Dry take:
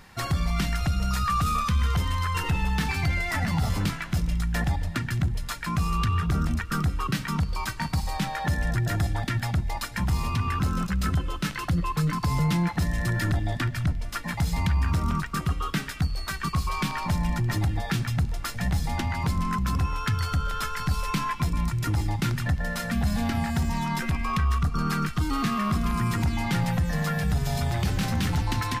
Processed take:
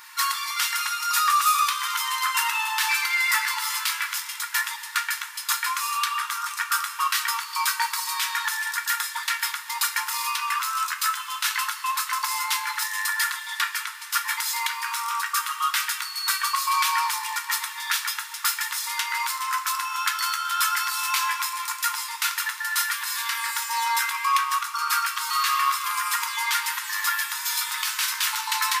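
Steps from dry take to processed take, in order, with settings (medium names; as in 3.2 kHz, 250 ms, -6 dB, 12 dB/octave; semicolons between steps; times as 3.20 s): brick-wall FIR high-pass 860 Hz; treble shelf 7.8 kHz +11 dB; two-slope reverb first 0.24 s, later 4.2 s, from -20 dB, DRR 3 dB; trim +5.5 dB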